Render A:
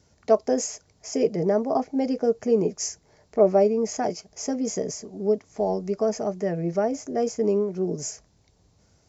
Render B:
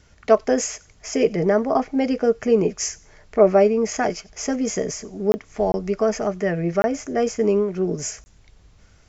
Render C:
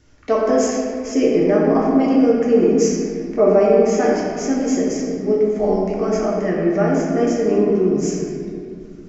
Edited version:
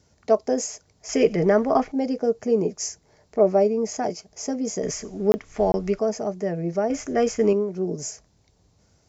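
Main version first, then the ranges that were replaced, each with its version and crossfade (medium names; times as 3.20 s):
A
1.09–1.92 s: from B
4.83–5.99 s: from B
6.90–7.53 s: from B
not used: C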